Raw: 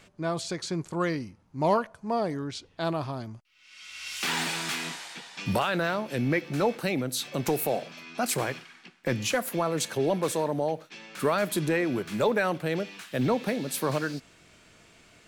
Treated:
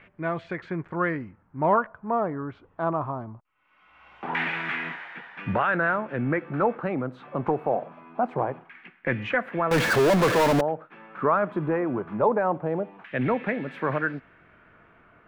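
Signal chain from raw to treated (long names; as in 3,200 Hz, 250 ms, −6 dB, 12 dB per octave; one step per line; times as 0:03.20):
flat-topped bell 6,800 Hz −10.5 dB
auto-filter low-pass saw down 0.23 Hz 840–2,100 Hz
0:09.71–0:10.61: power curve on the samples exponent 0.35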